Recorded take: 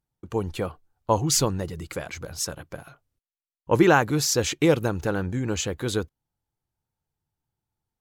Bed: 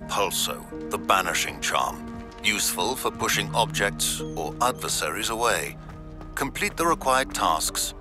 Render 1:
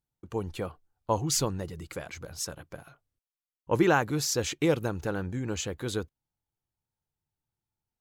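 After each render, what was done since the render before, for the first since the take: gain -5.5 dB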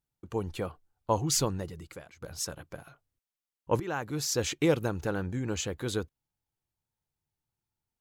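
1.55–2.22 fade out, to -20.5 dB; 3.8–4.42 fade in linear, from -19 dB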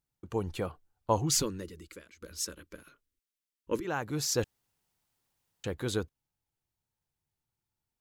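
1.42–3.85 fixed phaser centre 310 Hz, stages 4; 4.44–5.64 room tone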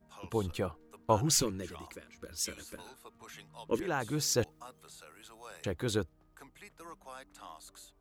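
add bed -27 dB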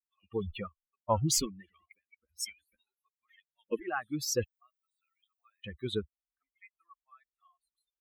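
per-bin expansion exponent 3; in parallel at -1 dB: limiter -28 dBFS, peak gain reduction 11.5 dB

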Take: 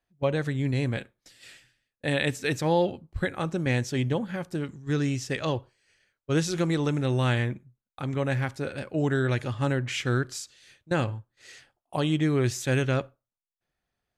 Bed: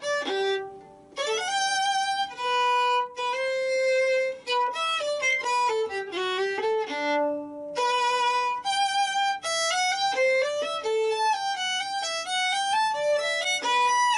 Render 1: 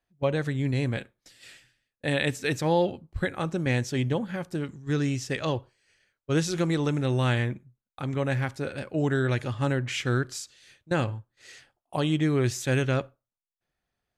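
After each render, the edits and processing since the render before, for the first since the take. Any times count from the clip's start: nothing audible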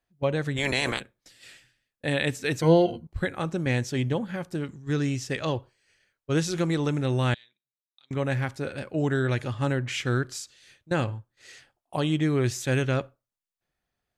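0.56–0.99 spectral limiter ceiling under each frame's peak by 27 dB; 2.61–3.07 ripple EQ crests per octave 1.9, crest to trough 17 dB; 7.34–8.11 band-pass 3800 Hz, Q 13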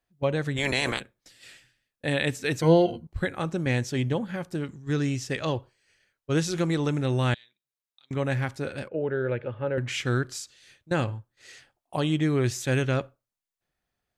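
8.88–9.78 speaker cabinet 130–2300 Hz, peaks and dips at 150 Hz -8 dB, 280 Hz -9 dB, 510 Hz +9 dB, 730 Hz -8 dB, 1100 Hz -9 dB, 1900 Hz -8 dB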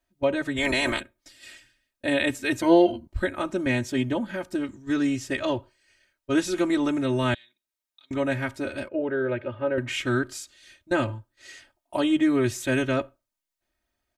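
comb 3.2 ms, depth 98%; dynamic EQ 5300 Hz, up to -6 dB, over -48 dBFS, Q 1.4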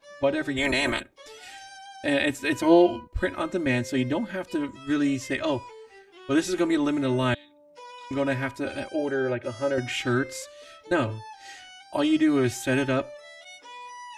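add bed -19.5 dB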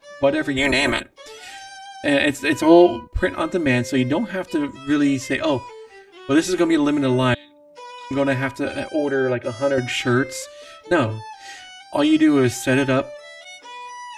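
gain +6 dB; limiter -2 dBFS, peak gain reduction 1 dB

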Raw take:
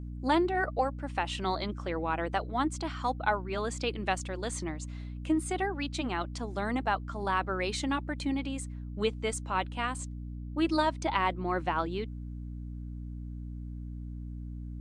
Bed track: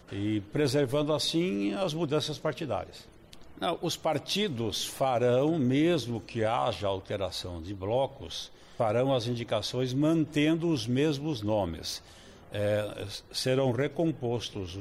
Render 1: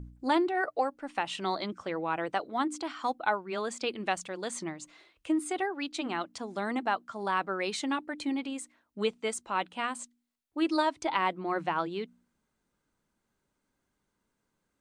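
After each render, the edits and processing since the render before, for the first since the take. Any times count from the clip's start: de-hum 60 Hz, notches 5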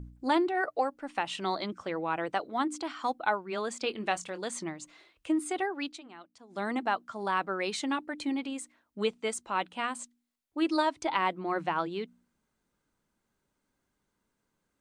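3.82–4.4 doubler 23 ms -12 dB; 5.88–6.61 dip -16 dB, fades 0.12 s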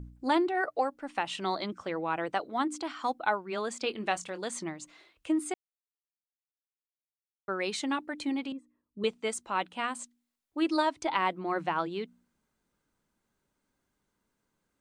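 5.54–7.48 mute; 8.52–9.04 running mean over 59 samples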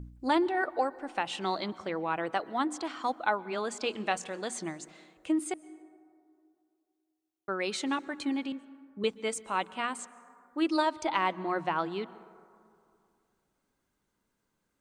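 plate-style reverb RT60 2.5 s, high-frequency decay 0.3×, pre-delay 0.11 s, DRR 19 dB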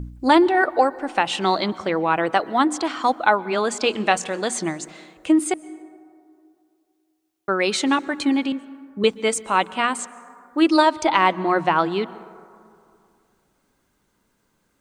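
gain +11.5 dB; limiter -2 dBFS, peak gain reduction 1.5 dB

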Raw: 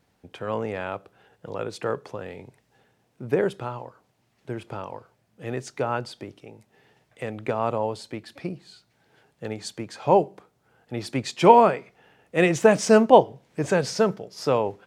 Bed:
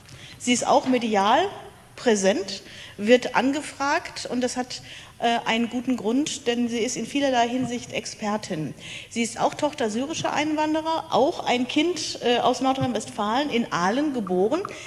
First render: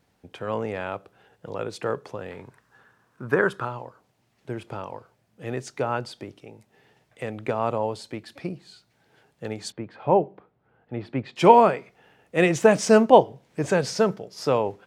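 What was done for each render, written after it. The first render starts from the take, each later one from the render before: 2.31–3.65 band shelf 1300 Hz +12.5 dB 1 oct; 9.72–11.36 air absorption 450 m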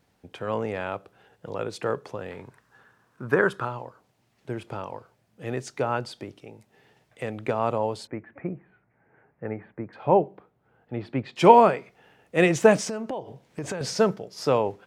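8.07–9.93 steep low-pass 2200 Hz 48 dB/oct; 12.77–13.81 compressor 16:1, threshold -27 dBFS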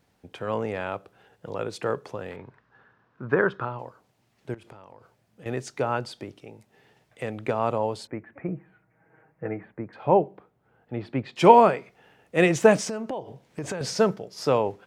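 2.36–3.79 air absorption 220 m; 4.54–5.46 compressor 8:1, threshold -43 dBFS; 8.48–9.65 comb 6.3 ms, depth 67%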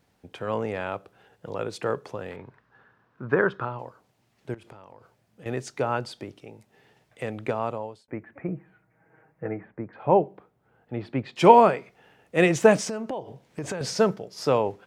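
7.43–8.08 fade out; 9.45–10.1 LPF 2500 Hz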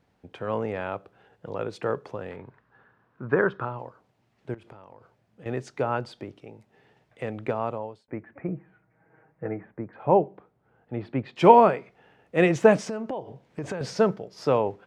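LPF 2600 Hz 6 dB/oct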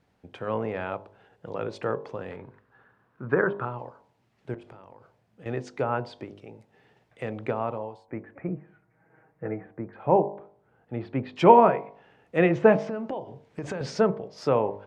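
de-hum 50.51 Hz, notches 22; treble ducked by the level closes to 2500 Hz, closed at -22 dBFS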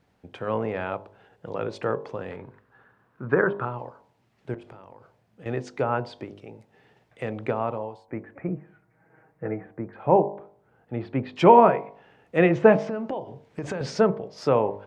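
gain +2 dB; limiter -3 dBFS, peak gain reduction 2.5 dB

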